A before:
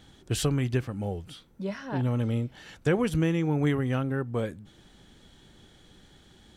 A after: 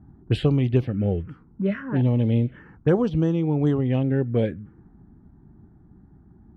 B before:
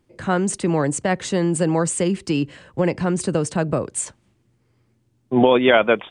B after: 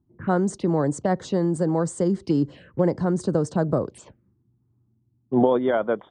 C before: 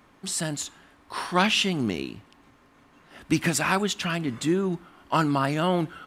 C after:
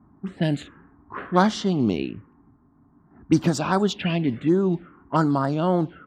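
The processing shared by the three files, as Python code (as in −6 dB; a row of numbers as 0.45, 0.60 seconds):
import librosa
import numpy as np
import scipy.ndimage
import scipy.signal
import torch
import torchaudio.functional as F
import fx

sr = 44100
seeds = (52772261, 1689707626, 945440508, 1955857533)

y = fx.highpass(x, sr, hz=64.0, slope=6)
y = fx.env_phaser(y, sr, low_hz=500.0, high_hz=2600.0, full_db=-19.5)
y = fx.high_shelf(y, sr, hz=2700.0, db=-9.0)
y = fx.rider(y, sr, range_db=4, speed_s=0.5)
y = fx.env_lowpass(y, sr, base_hz=480.0, full_db=-22.0)
y = y * 10.0 ** (-24 / 20.0) / np.sqrt(np.mean(np.square(y)))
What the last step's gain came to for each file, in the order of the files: +7.5, −2.0, +5.5 decibels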